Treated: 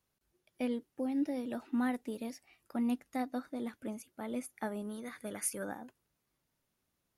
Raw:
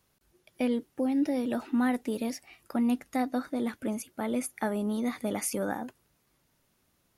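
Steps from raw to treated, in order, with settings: 4.82–5.64 s: graphic EQ with 31 bands 250 Hz -7 dB, 800 Hz -6 dB, 1.6 kHz +12 dB, 10 kHz +7 dB; upward expansion 1.5:1, over -35 dBFS; trim -5 dB

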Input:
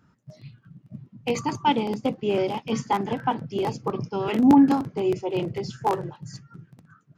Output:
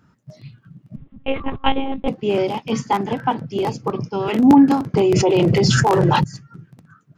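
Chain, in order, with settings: 0.96–2.08 s: monotone LPC vocoder at 8 kHz 270 Hz; 4.94–6.24 s: level flattener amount 100%; trim +4.5 dB

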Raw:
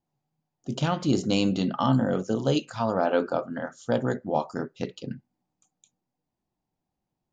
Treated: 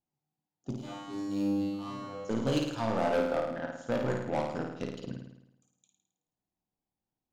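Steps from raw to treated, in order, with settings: Chebyshev shaper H 5 -21 dB, 7 -16 dB, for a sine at -11 dBFS; 0.75–2.25 s: feedback comb 100 Hz, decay 1.4 s, harmonics all, mix 100%; saturation -24 dBFS, distortion -7 dB; on a send: flutter echo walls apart 9.2 m, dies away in 0.83 s

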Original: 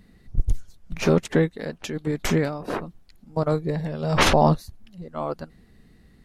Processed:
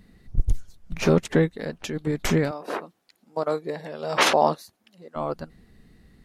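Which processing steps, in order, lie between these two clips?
2.51–5.16 s: high-pass 370 Hz 12 dB/octave

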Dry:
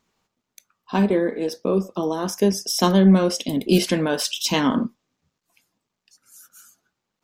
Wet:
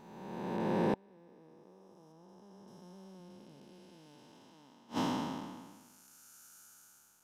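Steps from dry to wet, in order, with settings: spectral blur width 964 ms; 2.12–2.68 s: treble shelf 5.1 kHz -8.5 dB; inverted gate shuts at -22 dBFS, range -33 dB; peaking EQ 870 Hz +10.5 dB 0.29 oct; trim +1.5 dB

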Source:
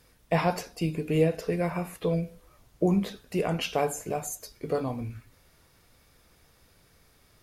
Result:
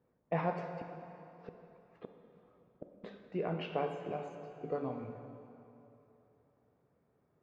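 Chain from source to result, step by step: low-pass that closes with the level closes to 1.8 kHz, closed at -24.5 dBFS; high-pass 140 Hz 12 dB/octave; level-controlled noise filter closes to 760 Hz, open at -22 dBFS; 0.64–3.04 s: inverted gate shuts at -25 dBFS, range -34 dB; plate-style reverb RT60 3.1 s, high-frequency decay 0.8×, DRR 5.5 dB; trim -8 dB

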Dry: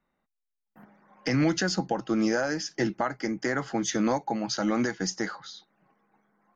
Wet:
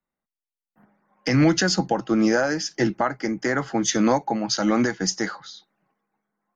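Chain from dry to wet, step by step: three bands expanded up and down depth 40%; trim +5.5 dB

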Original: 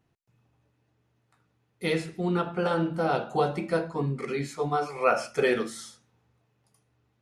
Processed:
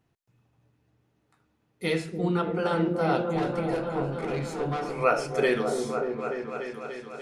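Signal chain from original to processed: 3.33–4.88 s: valve stage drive 27 dB, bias 0.4; delay with an opening low-pass 293 ms, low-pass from 400 Hz, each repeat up 1 oct, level -3 dB

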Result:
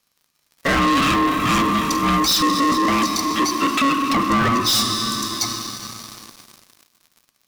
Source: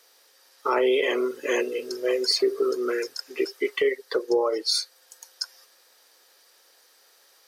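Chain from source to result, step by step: plate-style reverb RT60 4.5 s, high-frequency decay 0.95×, DRR 9 dB; waveshaping leveller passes 5; ring modulator 690 Hz

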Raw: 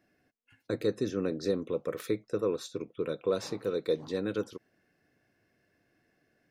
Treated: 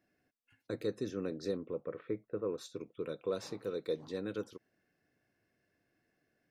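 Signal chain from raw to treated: 1.57–2.58 s: Bessel low-pass 1.7 kHz, order 8; trim -6.5 dB

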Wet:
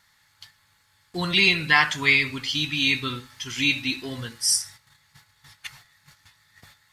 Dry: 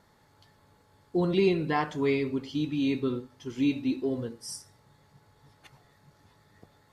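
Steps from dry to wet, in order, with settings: gate -58 dBFS, range -11 dB; FFT filter 110 Hz 0 dB, 430 Hz -13 dB, 1.9 kHz +14 dB; trim +4.5 dB

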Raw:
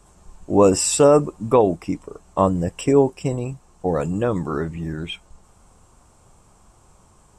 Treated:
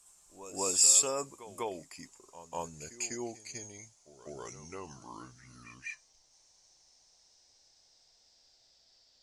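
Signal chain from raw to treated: gliding tape speed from 99% -> 61%; pre-emphasis filter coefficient 0.97; pre-echo 198 ms -13 dB

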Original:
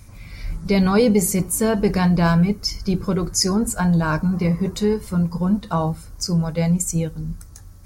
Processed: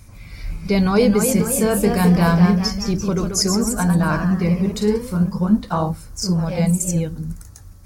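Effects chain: ever faster or slower copies 315 ms, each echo +1 st, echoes 3, each echo -6 dB; 1.35–2.61 s: doubling 34 ms -9 dB

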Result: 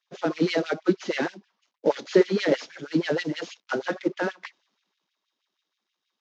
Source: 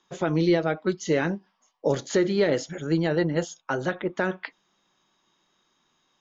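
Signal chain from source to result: CVSD coder 32 kbps; LFO high-pass sine 6.3 Hz 200–2900 Hz; three bands expanded up and down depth 40%; trim -1 dB

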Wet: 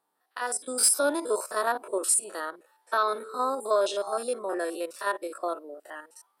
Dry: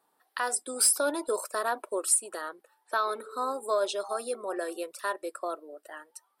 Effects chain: spectrogram pixelated in time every 50 ms; level rider gain up to 8.5 dB; trim -4.5 dB

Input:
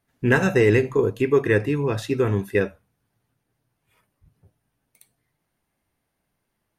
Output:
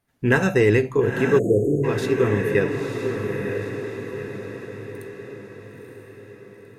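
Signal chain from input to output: echo that smears into a reverb 942 ms, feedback 52%, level -5 dB; spectral selection erased 1.39–1.84 s, 730–6400 Hz

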